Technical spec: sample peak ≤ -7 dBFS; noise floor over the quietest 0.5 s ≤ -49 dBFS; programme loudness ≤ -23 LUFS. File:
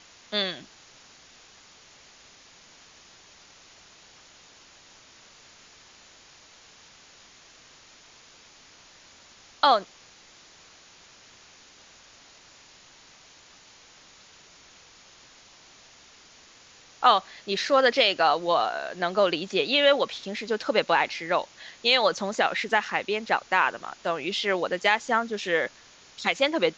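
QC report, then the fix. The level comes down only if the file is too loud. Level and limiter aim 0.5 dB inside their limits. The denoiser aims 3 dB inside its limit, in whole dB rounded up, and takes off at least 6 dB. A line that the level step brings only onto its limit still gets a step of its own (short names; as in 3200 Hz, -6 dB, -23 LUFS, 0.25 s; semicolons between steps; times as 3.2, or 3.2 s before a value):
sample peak -6.5 dBFS: fail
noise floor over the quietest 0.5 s -53 dBFS: OK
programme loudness -24.5 LUFS: OK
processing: limiter -7.5 dBFS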